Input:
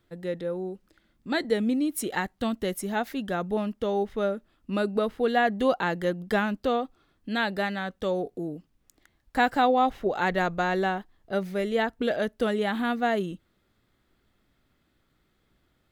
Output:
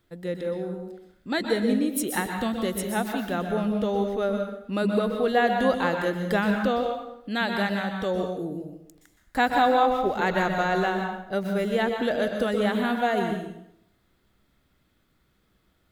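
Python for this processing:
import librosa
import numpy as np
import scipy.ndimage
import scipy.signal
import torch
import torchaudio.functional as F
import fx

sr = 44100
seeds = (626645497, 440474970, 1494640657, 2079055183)

y = fx.high_shelf(x, sr, hz=6900.0, db=4.0)
y = fx.rev_plate(y, sr, seeds[0], rt60_s=0.75, hf_ratio=0.8, predelay_ms=110, drr_db=3.5)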